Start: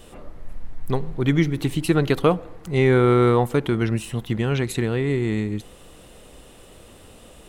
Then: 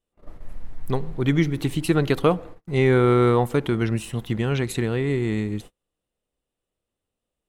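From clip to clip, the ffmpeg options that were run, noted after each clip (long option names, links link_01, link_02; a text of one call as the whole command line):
ffmpeg -i in.wav -af "agate=range=-37dB:threshold=-35dB:ratio=16:detection=peak,volume=-1dB" out.wav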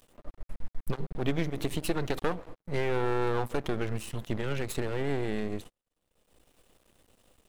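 ffmpeg -i in.wav -af "acompressor=threshold=-20dB:ratio=3,aeval=exprs='max(val(0),0)':channel_layout=same,acompressor=mode=upward:threshold=-40dB:ratio=2.5,volume=-1dB" out.wav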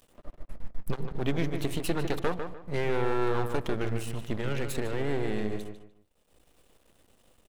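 ffmpeg -i in.wav -filter_complex "[0:a]asplit=2[link_01][link_02];[link_02]adelay=150,lowpass=frequency=3100:poles=1,volume=-7dB,asplit=2[link_03][link_04];[link_04]adelay=150,lowpass=frequency=3100:poles=1,volume=0.28,asplit=2[link_05][link_06];[link_06]adelay=150,lowpass=frequency=3100:poles=1,volume=0.28[link_07];[link_01][link_03][link_05][link_07]amix=inputs=4:normalize=0" out.wav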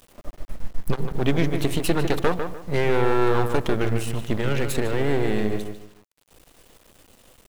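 ffmpeg -i in.wav -af "acrusher=bits=7:dc=4:mix=0:aa=0.000001,volume=7.5dB" out.wav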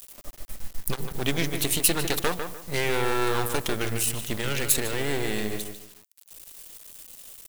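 ffmpeg -i in.wav -af "crystalizer=i=7:c=0,volume=-7dB" out.wav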